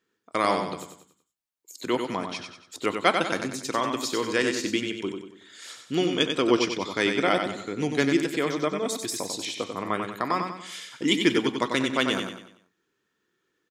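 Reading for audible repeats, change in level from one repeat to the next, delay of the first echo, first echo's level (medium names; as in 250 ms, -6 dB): 4, -7.5 dB, 94 ms, -6.0 dB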